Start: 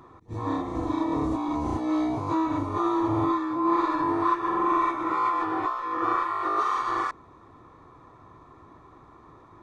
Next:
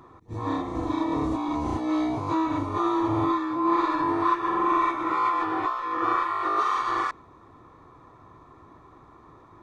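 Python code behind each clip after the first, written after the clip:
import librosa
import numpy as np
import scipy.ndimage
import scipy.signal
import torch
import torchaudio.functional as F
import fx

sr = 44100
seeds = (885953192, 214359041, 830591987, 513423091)

y = fx.dynamic_eq(x, sr, hz=3000.0, q=0.77, threshold_db=-42.0, ratio=4.0, max_db=4)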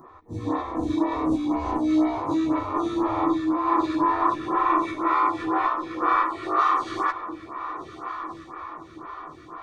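y = fx.doubler(x, sr, ms=13.0, db=-8.0)
y = fx.echo_diffused(y, sr, ms=1283, feedback_pct=55, wet_db=-12)
y = fx.stagger_phaser(y, sr, hz=2.0)
y = y * librosa.db_to_amplitude(4.0)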